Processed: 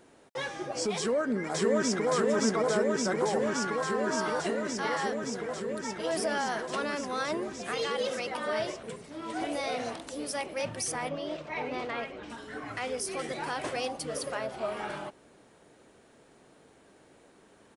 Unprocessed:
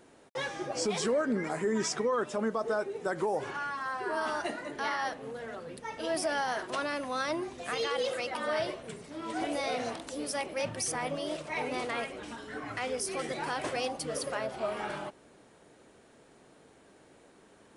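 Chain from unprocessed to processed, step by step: 0.97–2.11 echo throw 0.57 s, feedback 85%, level -0.5 dB; 11.09–12.3 air absorption 120 m

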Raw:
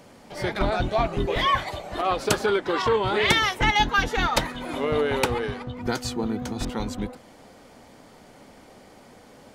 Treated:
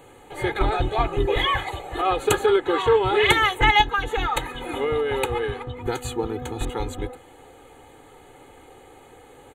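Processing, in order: comb 2.4 ms, depth 80%; 3.81–6.11 compressor, threshold -20 dBFS, peak gain reduction 7.5 dB; Butterworth band-stop 5200 Hz, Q 1.9

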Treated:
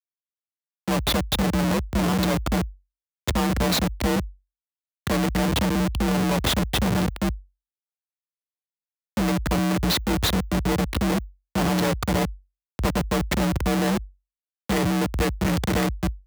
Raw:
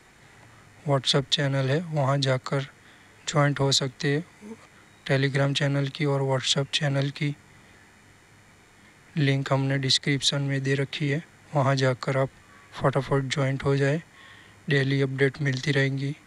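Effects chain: Schmitt trigger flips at -24.5 dBFS; frequency shift +47 Hz; gain +5 dB

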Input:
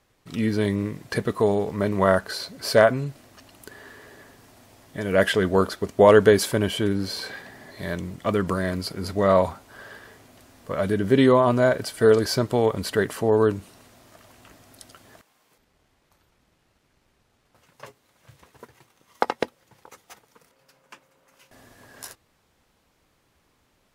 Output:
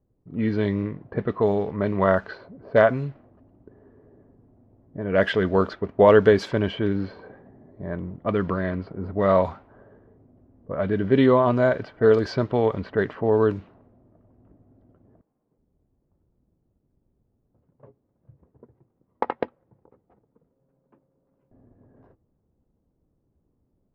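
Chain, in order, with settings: air absorption 200 m; low-pass opened by the level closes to 350 Hz, open at -16.5 dBFS

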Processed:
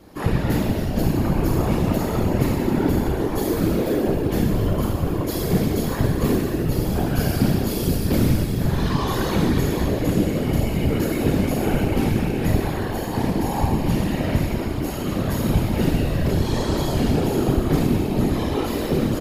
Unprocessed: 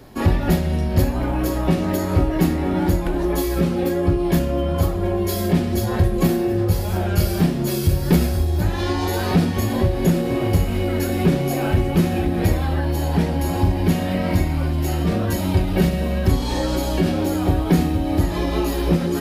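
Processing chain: feedback echo 0.276 s, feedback 32%, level -12.5 dB; Schroeder reverb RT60 1.6 s, combs from 29 ms, DRR -1.5 dB; whisperiser; gain -5 dB

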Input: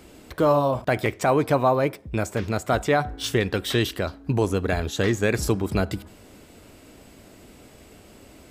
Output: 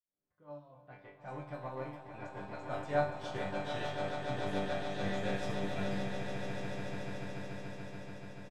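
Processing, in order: opening faded in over 2.53 s; in parallel at -8 dB: soft clip -21.5 dBFS, distortion -9 dB; on the sum: LPF 3400 Hz 6 dB/oct; bell 370 Hz -12 dB 0.21 oct; resonator bank G2 sus4, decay 0.55 s; low-pass opened by the level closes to 1700 Hz, open at -34 dBFS; comb 5.6 ms, depth 38%; on a send: swelling echo 0.144 s, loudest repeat 8, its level -8 dB; on the sum: upward expander 1.5:1, over -49 dBFS; gain +1 dB

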